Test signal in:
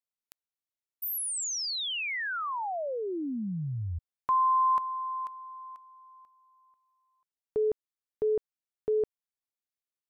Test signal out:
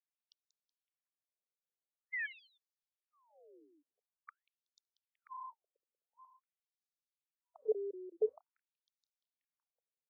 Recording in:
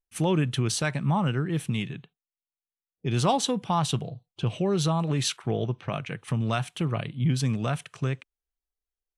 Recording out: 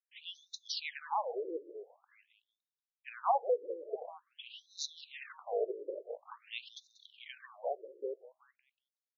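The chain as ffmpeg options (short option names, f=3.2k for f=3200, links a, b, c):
-filter_complex "[0:a]lowshelf=f=350:t=q:w=3:g=-8,asplit=5[a][b][c][d][e];[b]adelay=187,afreqshift=-31,volume=-13.5dB[f];[c]adelay=374,afreqshift=-62,volume=-21.2dB[g];[d]adelay=561,afreqshift=-93,volume=-29dB[h];[e]adelay=748,afreqshift=-124,volume=-36.7dB[i];[a][f][g][h][i]amix=inputs=5:normalize=0,afftfilt=real='re*between(b*sr/1024,400*pow(5100/400,0.5+0.5*sin(2*PI*0.47*pts/sr))/1.41,400*pow(5100/400,0.5+0.5*sin(2*PI*0.47*pts/sr))*1.41)':imag='im*between(b*sr/1024,400*pow(5100/400,0.5+0.5*sin(2*PI*0.47*pts/sr))/1.41,400*pow(5100/400,0.5+0.5*sin(2*PI*0.47*pts/sr))*1.41)':win_size=1024:overlap=0.75,volume=-5dB"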